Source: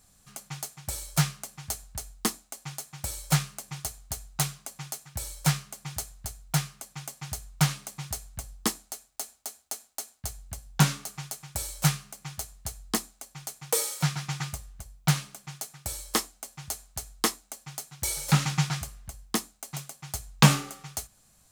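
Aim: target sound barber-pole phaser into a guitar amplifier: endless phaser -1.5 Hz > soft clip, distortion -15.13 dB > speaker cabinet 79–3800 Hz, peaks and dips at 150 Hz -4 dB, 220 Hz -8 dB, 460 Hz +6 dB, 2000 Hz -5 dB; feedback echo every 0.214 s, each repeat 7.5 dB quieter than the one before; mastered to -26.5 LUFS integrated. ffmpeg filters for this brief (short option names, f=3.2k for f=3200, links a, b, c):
-filter_complex "[0:a]aecho=1:1:214|428|642|856|1070:0.422|0.177|0.0744|0.0312|0.0131,asplit=2[a][b];[b]afreqshift=-1.5[c];[a][c]amix=inputs=2:normalize=1,asoftclip=threshold=-14.5dB,highpass=79,equalizer=f=150:t=q:w=4:g=-4,equalizer=f=220:t=q:w=4:g=-8,equalizer=f=460:t=q:w=4:g=6,equalizer=f=2k:t=q:w=4:g=-5,lowpass=f=3.8k:w=0.5412,lowpass=f=3.8k:w=1.3066,volume=12dB"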